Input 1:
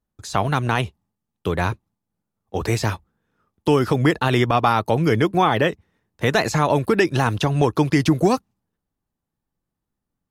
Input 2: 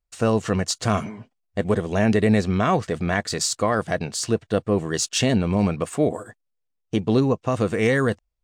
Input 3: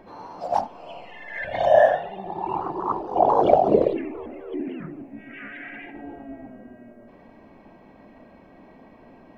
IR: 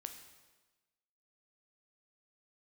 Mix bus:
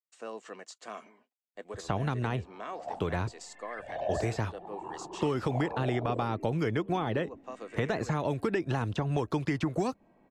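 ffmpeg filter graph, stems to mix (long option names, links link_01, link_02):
-filter_complex "[0:a]adelay=1550,volume=-4dB[link_01];[1:a]highpass=frequency=250:width=0.5412,highpass=frequency=250:width=1.3066,lowshelf=frequency=390:gain=-11,bandreject=frequency=1400:width=18,volume=-15dB[link_02];[2:a]adelay=2350,volume=-14dB[link_03];[link_01][link_02][link_03]amix=inputs=3:normalize=0,aemphasis=mode=reproduction:type=50fm,acrossover=split=590|2400[link_04][link_05][link_06];[link_04]acompressor=threshold=-29dB:ratio=4[link_07];[link_05]acompressor=threshold=-37dB:ratio=4[link_08];[link_06]acompressor=threshold=-48dB:ratio=4[link_09];[link_07][link_08][link_09]amix=inputs=3:normalize=0,equalizer=frequency=7600:width=3.5:gain=7"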